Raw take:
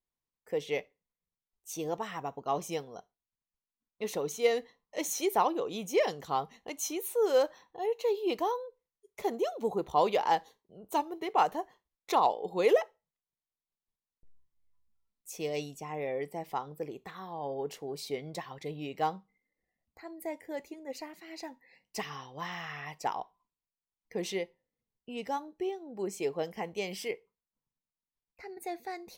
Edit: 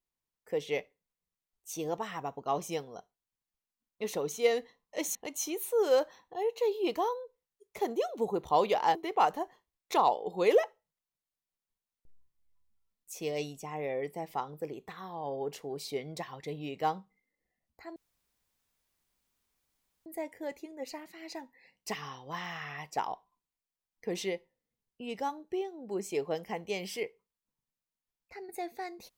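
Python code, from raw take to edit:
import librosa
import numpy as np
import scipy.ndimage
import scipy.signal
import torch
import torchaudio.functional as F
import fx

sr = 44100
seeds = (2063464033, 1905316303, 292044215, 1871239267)

y = fx.edit(x, sr, fx.cut(start_s=5.15, length_s=1.43),
    fx.cut(start_s=10.38, length_s=0.75),
    fx.insert_room_tone(at_s=20.14, length_s=2.1), tone=tone)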